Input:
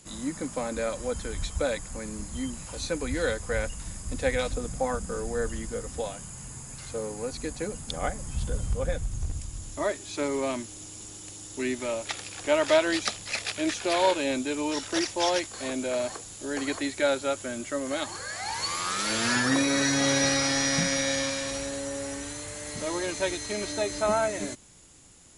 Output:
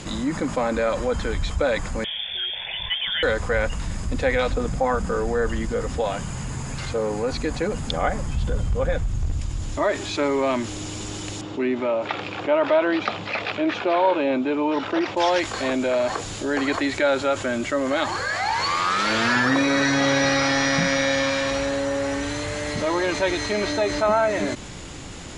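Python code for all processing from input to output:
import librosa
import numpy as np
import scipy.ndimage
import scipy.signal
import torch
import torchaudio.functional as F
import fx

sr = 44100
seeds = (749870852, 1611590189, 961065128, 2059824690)

y = fx.chain(x, sr, fx.freq_invert(carrier_hz=3500),
    fx.fixed_phaser(hz=1200.0, stages=6), at=(2.04, 3.23))
y = fx.chain(y, sr, fx.bandpass_edges(low_hz=140.0, high_hz=2400.0),
    fx.peak_eq(hz=1800.0, db=-6.0, octaves=0.57), at=(11.41, 15.17))
y = scipy.signal.sosfilt(scipy.signal.butter(2, 4000.0, 'lowpass', fs=sr, output='sos'), y)
y = fx.dynamic_eq(y, sr, hz=1100.0, q=0.72, threshold_db=-40.0, ratio=4.0, max_db=4)
y = fx.env_flatten(y, sr, amount_pct=50)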